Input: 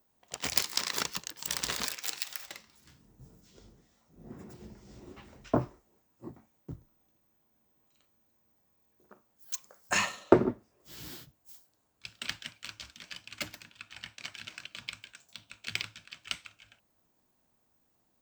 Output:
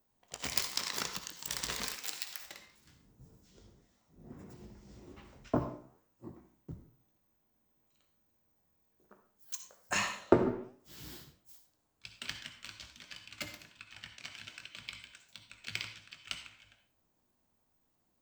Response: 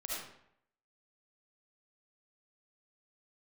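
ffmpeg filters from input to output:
-filter_complex "[0:a]asplit=2[link_01][link_02];[1:a]atrim=start_sample=2205,asetrate=70560,aresample=44100,adelay=20[link_03];[link_02][link_03]afir=irnorm=-1:irlink=0,volume=-4.5dB[link_04];[link_01][link_04]amix=inputs=2:normalize=0,flanger=delay=7.1:depth=9.7:regen=87:speed=1.3:shape=sinusoidal,lowshelf=frequency=150:gain=3.5"

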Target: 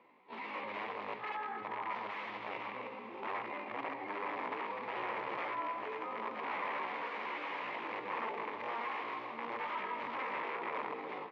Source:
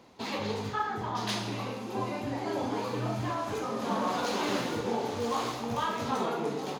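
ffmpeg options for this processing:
ffmpeg -i in.wav -af "equalizer=frequency=800:width_type=o:width=2.7:gain=-9,atempo=0.6,aeval=exprs='(mod(39.8*val(0)+1,2)-1)/39.8':channel_layout=same,highpass=490,equalizer=frequency=680:width_type=q:width=4:gain=-4,equalizer=frequency=990:width_type=q:width=4:gain=6,equalizer=frequency=1500:width_type=q:width=4:gain=-8,equalizer=frequency=2200:width_type=q:width=4:gain=5,lowpass=frequency=2200:width=0.5412,lowpass=frequency=2200:width=1.3066,aecho=1:1:313|626|939|1252|1565|1878:0.266|0.146|0.0805|0.0443|0.0243|0.0134,volume=2.5dB" out.wav

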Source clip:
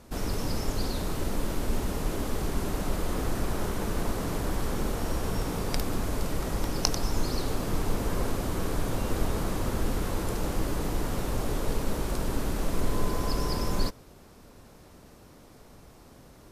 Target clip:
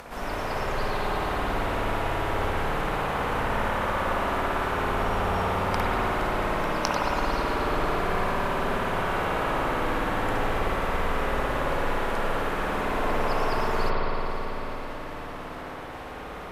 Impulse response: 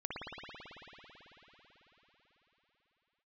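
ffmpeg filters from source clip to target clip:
-filter_complex "[0:a]acompressor=mode=upward:threshold=-31dB:ratio=2.5,acrossover=split=580 2900:gain=0.2 1 0.251[link_01][link_02][link_03];[link_01][link_02][link_03]amix=inputs=3:normalize=0[link_04];[1:a]atrim=start_sample=2205[link_05];[link_04][link_05]afir=irnorm=-1:irlink=0,volume=8.5dB"

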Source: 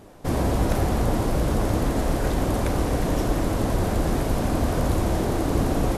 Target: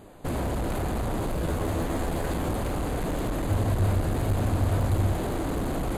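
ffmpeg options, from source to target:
ffmpeg -i in.wav -filter_complex "[0:a]asplit=2[link_01][link_02];[link_02]alimiter=limit=-18dB:level=0:latency=1,volume=0.5dB[link_03];[link_01][link_03]amix=inputs=2:normalize=0,asuperstop=centerf=5500:order=4:qfactor=3.5,volume=17.5dB,asoftclip=hard,volume=-17.5dB,asettb=1/sr,asplit=3[link_04][link_05][link_06];[link_04]atrim=end=1.404[link_07];[link_05]atrim=start=1.4:end=2.51,asetpts=PTS-STARTPTS,afade=type=in:duration=0.004:curve=qsin,afade=type=out:start_time=1.106:duration=0.004:curve=qsin,asplit=2[link_08][link_09];[link_09]adelay=12,volume=-5dB[link_10];[link_08][link_10]amix=inputs=2:normalize=0,atrim=end_sample=48951[link_11];[link_06]atrim=start=2.506[link_12];[link_07][link_11]acrossfade=duration=0.004:curve1=hsin:curve2=qsin[link_13];[link_13][link_12]acrossfade=duration=0.004:curve1=qsin:curve2=hsin,asettb=1/sr,asplit=3[link_14][link_15][link_16];[link_14]atrim=end=3.454[link_17];[link_15]atrim=start=3.45:end=5.13,asetpts=PTS-STARTPTS,afade=type=in:duration=0.004:curve=qsin,afade=type=out:start_time=1.676:duration=0.004:curve=qsin,equalizer=frequency=97:width=3.1:gain=13[link_18];[link_16]atrim=start=5.126[link_19];[link_17][link_18]acrossfade=duration=0.004:curve1=hsin:curve2=qsin[link_20];[link_20][link_19]acrossfade=duration=0.004:curve1=qsin:curve2=hsin,volume=-7.5dB" out.wav

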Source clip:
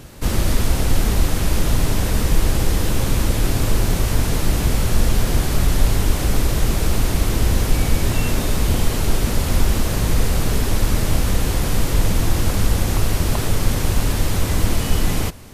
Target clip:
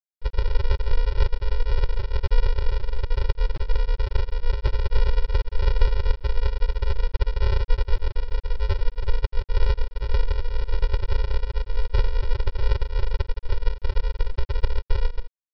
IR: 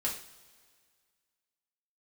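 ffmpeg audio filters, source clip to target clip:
-af "asuperstop=centerf=3100:order=12:qfactor=0.67,afftfilt=real='re*gte(hypot(re,im),1.41)':imag='im*gte(hypot(re,im),1.41)':win_size=1024:overlap=0.75,aresample=11025,acrusher=samples=23:mix=1:aa=0.000001,aresample=44100,volume=-1.5dB"

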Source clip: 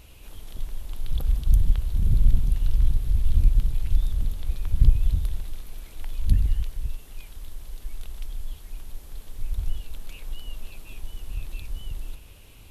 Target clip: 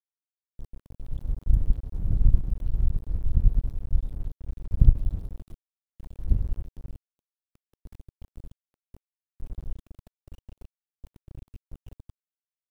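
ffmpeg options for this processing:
ffmpeg -i in.wav -af "aeval=exprs='val(0)*gte(abs(val(0)),0.0562)':channel_layout=same,tiltshelf=frequency=1100:gain=9,aeval=exprs='1.88*(cos(1*acos(clip(val(0)/1.88,-1,1)))-cos(1*PI/2))+0.335*(cos(3*acos(clip(val(0)/1.88,-1,1)))-cos(3*PI/2))+0.0668*(cos(7*acos(clip(val(0)/1.88,-1,1)))-cos(7*PI/2))+0.015*(cos(8*acos(clip(val(0)/1.88,-1,1)))-cos(8*PI/2))':channel_layout=same,volume=-7.5dB" out.wav

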